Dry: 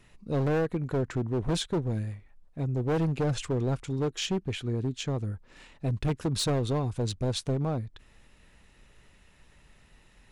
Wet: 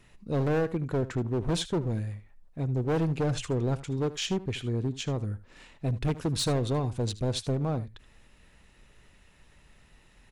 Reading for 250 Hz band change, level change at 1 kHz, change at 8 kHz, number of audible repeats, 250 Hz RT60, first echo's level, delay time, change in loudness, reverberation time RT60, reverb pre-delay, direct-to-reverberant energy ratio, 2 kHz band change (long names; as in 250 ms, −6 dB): 0.0 dB, 0.0 dB, 0.0 dB, 1, no reverb audible, −16.5 dB, 77 ms, 0.0 dB, no reverb audible, no reverb audible, no reverb audible, 0.0 dB